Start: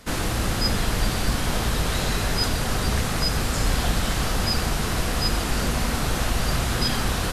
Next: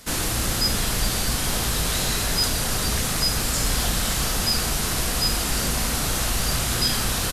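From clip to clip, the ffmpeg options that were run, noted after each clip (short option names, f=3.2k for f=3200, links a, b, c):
-filter_complex "[0:a]highshelf=f=4k:g=11.5,asplit=2[a][b];[b]asoftclip=type=tanh:threshold=-15.5dB,volume=-8dB[c];[a][c]amix=inputs=2:normalize=0,asplit=2[d][e];[e]adelay=35,volume=-11dB[f];[d][f]amix=inputs=2:normalize=0,volume=-5dB"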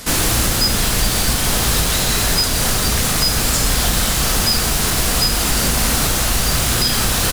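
-filter_complex "[0:a]asplit=2[a][b];[b]aeval=exprs='(mod(21.1*val(0)+1,2)-1)/21.1':c=same,volume=-3.5dB[c];[a][c]amix=inputs=2:normalize=0,alimiter=limit=-14dB:level=0:latency=1:release=294,volume=8dB"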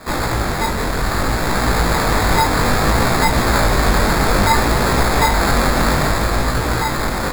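-af "dynaudnorm=f=290:g=11:m=11.5dB,acrusher=samples=15:mix=1:aa=0.000001,flanger=delay=16:depth=6.3:speed=0.61"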